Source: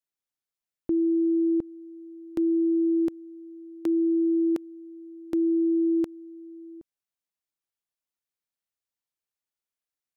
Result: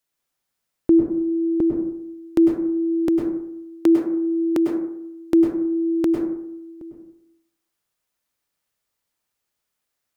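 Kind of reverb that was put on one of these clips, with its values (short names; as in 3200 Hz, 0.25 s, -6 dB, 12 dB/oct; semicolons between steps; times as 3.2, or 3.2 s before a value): plate-style reverb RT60 0.76 s, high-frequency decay 0.35×, pre-delay 90 ms, DRR 0.5 dB; gain +10.5 dB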